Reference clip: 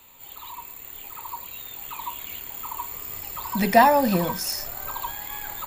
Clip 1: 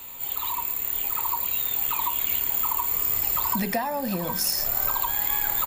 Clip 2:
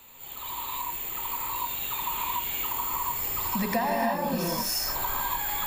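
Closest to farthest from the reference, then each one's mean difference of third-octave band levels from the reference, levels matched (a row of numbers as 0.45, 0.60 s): 1, 2; 6.0, 8.0 dB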